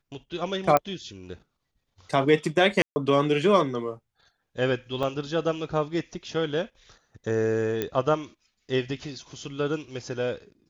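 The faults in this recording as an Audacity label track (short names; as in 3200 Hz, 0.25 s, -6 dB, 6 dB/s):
0.770000	0.770000	pop -8 dBFS
2.820000	2.960000	gap 0.14 s
5.030000	5.030000	gap 3.6 ms
7.820000	7.820000	pop -13 dBFS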